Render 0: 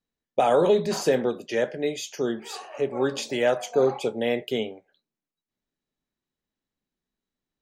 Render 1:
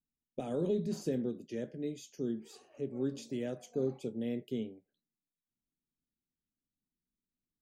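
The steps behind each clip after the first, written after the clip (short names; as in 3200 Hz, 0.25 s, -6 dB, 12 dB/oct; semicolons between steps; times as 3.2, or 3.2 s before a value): EQ curve 270 Hz 0 dB, 880 Hz -23 dB, 6800 Hz -11 dB; gain -4.5 dB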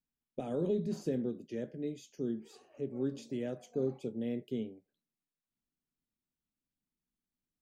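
high shelf 3800 Hz -6 dB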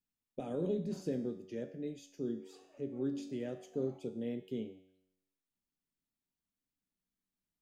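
resonator 94 Hz, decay 0.86 s, harmonics all, mix 70%; gain +6.5 dB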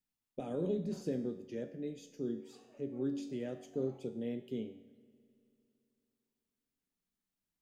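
reverb RT60 3.0 s, pre-delay 32 ms, DRR 19.5 dB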